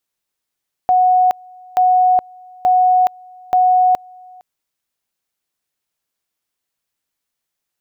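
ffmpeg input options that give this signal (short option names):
-f lavfi -i "aevalsrc='pow(10,(-9-28*gte(mod(t,0.88),0.42))/20)*sin(2*PI*735*t)':d=3.52:s=44100"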